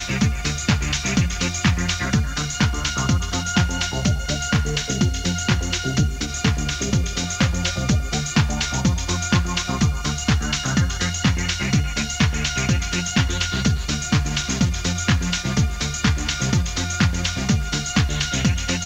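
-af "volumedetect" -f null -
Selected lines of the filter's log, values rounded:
mean_volume: -21.0 dB
max_volume: -3.6 dB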